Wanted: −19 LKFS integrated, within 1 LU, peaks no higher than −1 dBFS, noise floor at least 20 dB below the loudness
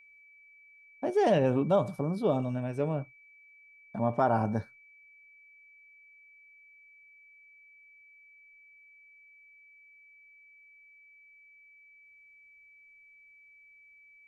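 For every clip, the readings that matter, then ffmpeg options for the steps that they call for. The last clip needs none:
interfering tone 2,300 Hz; level of the tone −55 dBFS; integrated loudness −29.0 LKFS; sample peak −13.5 dBFS; target loudness −19.0 LKFS
→ -af "bandreject=frequency=2300:width=30"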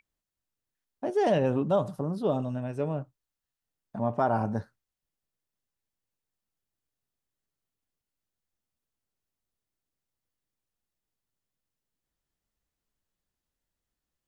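interfering tone none found; integrated loudness −29.0 LKFS; sample peak −13.5 dBFS; target loudness −19.0 LKFS
→ -af "volume=10dB"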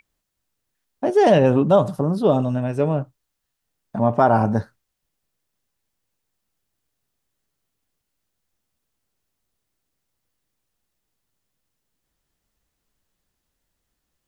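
integrated loudness −19.0 LKFS; sample peak −3.5 dBFS; background noise floor −78 dBFS

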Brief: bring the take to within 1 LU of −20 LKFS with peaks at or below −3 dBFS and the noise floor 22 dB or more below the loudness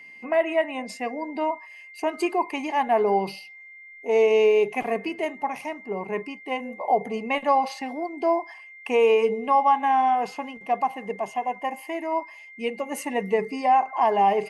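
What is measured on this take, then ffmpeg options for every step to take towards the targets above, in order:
interfering tone 2,100 Hz; level of the tone −43 dBFS; integrated loudness −24.5 LKFS; sample peak −9.5 dBFS; target loudness −20.0 LKFS
→ -af "bandreject=frequency=2100:width=30"
-af "volume=4.5dB"

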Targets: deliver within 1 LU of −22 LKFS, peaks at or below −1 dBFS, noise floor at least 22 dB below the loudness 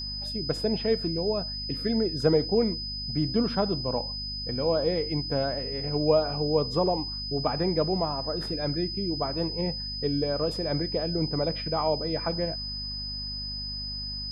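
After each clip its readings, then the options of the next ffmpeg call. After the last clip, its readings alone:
mains hum 50 Hz; hum harmonics up to 250 Hz; level of the hum −37 dBFS; interfering tone 5,000 Hz; level of the tone −33 dBFS; integrated loudness −28.0 LKFS; sample peak −10.0 dBFS; target loudness −22.0 LKFS
→ -af "bandreject=frequency=50:width_type=h:width=6,bandreject=frequency=100:width_type=h:width=6,bandreject=frequency=150:width_type=h:width=6,bandreject=frequency=200:width_type=h:width=6,bandreject=frequency=250:width_type=h:width=6"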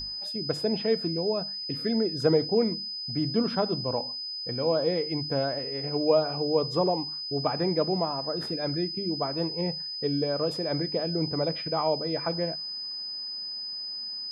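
mains hum none found; interfering tone 5,000 Hz; level of the tone −33 dBFS
→ -af "bandreject=frequency=5000:width=30"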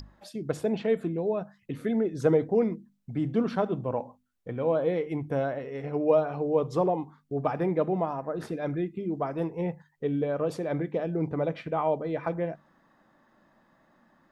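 interfering tone none found; integrated loudness −29.0 LKFS; sample peak −11.0 dBFS; target loudness −22.0 LKFS
→ -af "volume=7dB"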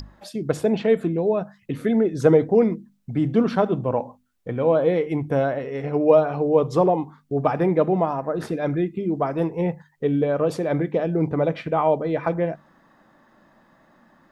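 integrated loudness −22.0 LKFS; sample peak −4.0 dBFS; background noise floor −61 dBFS

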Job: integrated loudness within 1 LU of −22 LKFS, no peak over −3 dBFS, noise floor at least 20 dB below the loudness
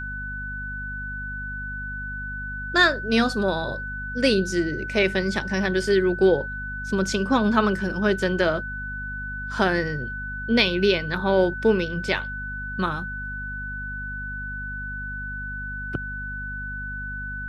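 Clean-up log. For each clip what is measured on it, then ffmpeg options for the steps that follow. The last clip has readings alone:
mains hum 50 Hz; hum harmonics up to 250 Hz; level of the hum −33 dBFS; interfering tone 1,500 Hz; level of the tone −31 dBFS; integrated loudness −25.0 LKFS; sample peak −5.0 dBFS; target loudness −22.0 LKFS
→ -af "bandreject=frequency=50:width_type=h:width=6,bandreject=frequency=100:width_type=h:width=6,bandreject=frequency=150:width_type=h:width=6,bandreject=frequency=200:width_type=h:width=6,bandreject=frequency=250:width_type=h:width=6"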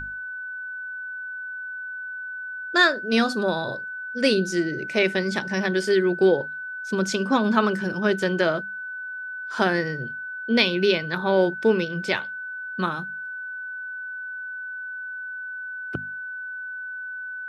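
mains hum none found; interfering tone 1,500 Hz; level of the tone −31 dBFS
→ -af "bandreject=frequency=1500:width=30"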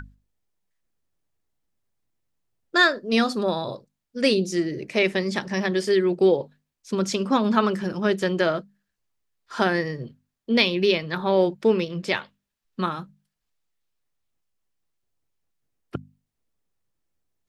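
interfering tone none found; integrated loudness −23.0 LKFS; sample peak −4.5 dBFS; target loudness −22.0 LKFS
→ -af "volume=1dB"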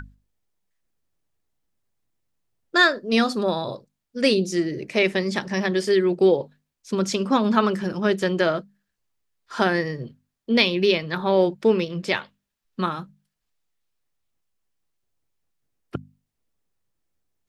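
integrated loudness −22.0 LKFS; sample peak −3.5 dBFS; background noise floor −81 dBFS

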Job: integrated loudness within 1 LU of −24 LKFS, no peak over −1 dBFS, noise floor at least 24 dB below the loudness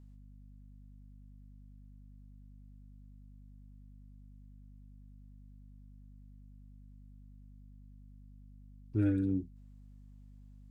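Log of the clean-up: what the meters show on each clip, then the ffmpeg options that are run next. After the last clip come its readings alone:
mains hum 50 Hz; hum harmonics up to 250 Hz; level of the hum −51 dBFS; integrated loudness −33.5 LKFS; sample peak −19.5 dBFS; target loudness −24.0 LKFS
→ -af "bandreject=frequency=50:width_type=h:width=6,bandreject=frequency=100:width_type=h:width=6,bandreject=frequency=150:width_type=h:width=6,bandreject=frequency=200:width_type=h:width=6,bandreject=frequency=250:width_type=h:width=6"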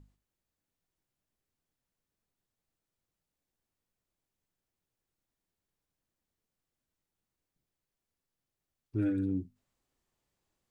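mains hum none found; integrated loudness −33.5 LKFS; sample peak −21.0 dBFS; target loudness −24.0 LKFS
→ -af "volume=9.5dB"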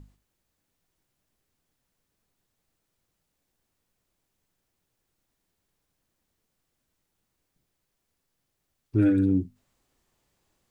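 integrated loudness −24.0 LKFS; sample peak −11.5 dBFS; background noise floor −80 dBFS

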